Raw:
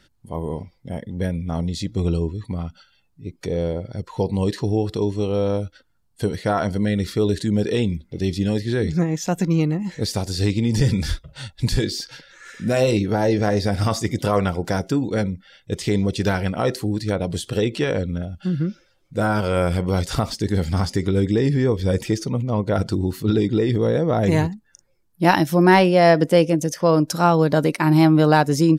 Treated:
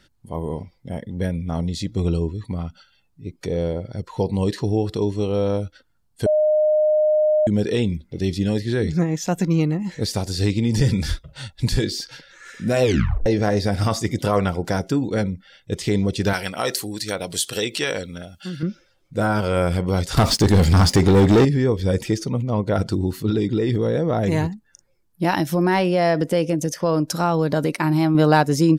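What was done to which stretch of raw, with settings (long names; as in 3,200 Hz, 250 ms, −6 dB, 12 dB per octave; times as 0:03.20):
0:06.26–0:07.47: beep over 612 Hz −14 dBFS
0:12.82: tape stop 0.44 s
0:16.33–0:18.63: spectral tilt +3.5 dB per octave
0:20.17–0:21.45: leveller curve on the samples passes 3
0:23.26–0:28.15: downward compressor 2.5 to 1, threshold −16 dBFS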